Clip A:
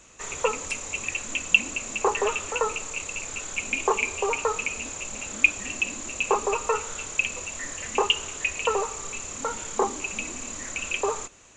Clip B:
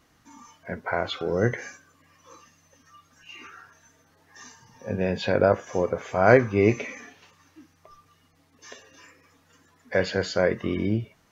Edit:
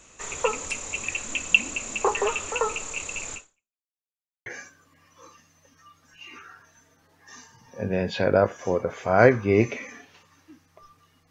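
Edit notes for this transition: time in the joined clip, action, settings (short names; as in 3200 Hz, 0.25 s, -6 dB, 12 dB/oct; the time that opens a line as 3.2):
clip A
3.34–3.84 fade out exponential
3.84–4.46 mute
4.46 switch to clip B from 1.54 s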